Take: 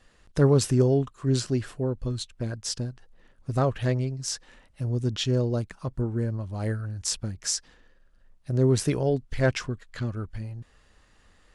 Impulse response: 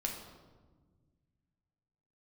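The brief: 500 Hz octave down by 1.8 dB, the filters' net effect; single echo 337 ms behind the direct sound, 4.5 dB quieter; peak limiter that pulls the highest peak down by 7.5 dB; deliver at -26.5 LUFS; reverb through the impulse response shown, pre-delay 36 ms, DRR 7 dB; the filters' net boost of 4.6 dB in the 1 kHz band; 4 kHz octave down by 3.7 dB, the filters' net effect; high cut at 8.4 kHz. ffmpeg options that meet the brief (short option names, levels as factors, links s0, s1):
-filter_complex "[0:a]lowpass=8400,equalizer=f=500:t=o:g=-4,equalizer=f=1000:t=o:g=8,equalizer=f=4000:t=o:g=-5,alimiter=limit=0.141:level=0:latency=1,aecho=1:1:337:0.596,asplit=2[s0][s1];[1:a]atrim=start_sample=2205,adelay=36[s2];[s1][s2]afir=irnorm=-1:irlink=0,volume=0.355[s3];[s0][s3]amix=inputs=2:normalize=0,volume=1.19"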